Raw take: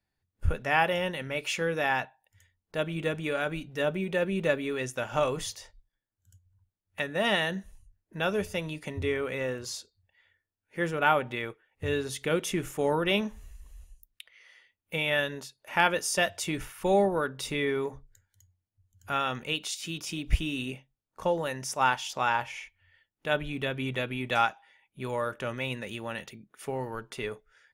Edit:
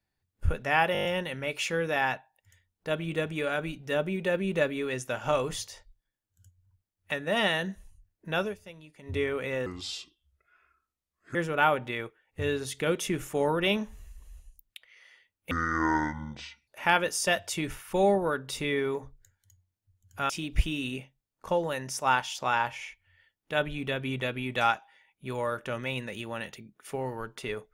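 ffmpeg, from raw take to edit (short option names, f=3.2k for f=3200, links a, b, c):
-filter_complex "[0:a]asplit=14[a][b][c][d][e][f][g][h][i][j][k][l][m][n];[a]atrim=end=0.952[o];[b]atrim=start=0.928:end=0.952[p];[c]atrim=start=0.928:end=0.952[q];[d]atrim=start=0.928:end=0.952[r];[e]atrim=start=0.928:end=0.952[s];[f]atrim=start=0.928:end=0.952[t];[g]atrim=start=0.928:end=8.43,asetpts=PTS-STARTPTS,afade=t=out:st=7.372:d=0.13:silence=0.188365[u];[h]atrim=start=8.43:end=8.9,asetpts=PTS-STARTPTS,volume=-14.5dB[v];[i]atrim=start=8.9:end=9.544,asetpts=PTS-STARTPTS,afade=t=in:d=0.13:silence=0.188365[w];[j]atrim=start=9.54:end=10.79,asetpts=PTS-STARTPTS,asetrate=32634,aresample=44100,atrim=end_sample=74493,asetpts=PTS-STARTPTS[x];[k]atrim=start=10.786:end=14.954[y];[l]atrim=start=14.95:end=15.58,asetpts=PTS-STARTPTS,asetrate=23814,aresample=44100[z];[m]atrim=start=15.576:end=19.202[aa];[n]atrim=start=20.038[ab];[o][p]acrossfade=d=0.004:c1=hsin:c2=hsin[ac];[ac][q]acrossfade=d=0.004:c1=hsin:c2=hsin[ad];[ad][r]acrossfade=d=0.004:c1=hsin:c2=hsin[ae];[ae][s]acrossfade=d=0.004:c1=hsin:c2=hsin[af];[af][t]acrossfade=d=0.004:c1=hsin:c2=hsin[ag];[u][v][w]concat=n=3:v=0:a=1[ah];[ag][ah]acrossfade=d=0.004:c1=hsin:c2=hsin[ai];[ai][x]acrossfade=d=0.004:c1=hsin:c2=hsin[aj];[aj][y]acrossfade=d=0.004:c1=hsin:c2=hsin[ak];[ak][z]acrossfade=d=0.004:c1=hsin:c2=hsin[al];[al][aa]acrossfade=d=0.004:c1=hsin:c2=hsin[am];[am][ab]acrossfade=d=0.004:c1=hsin:c2=hsin"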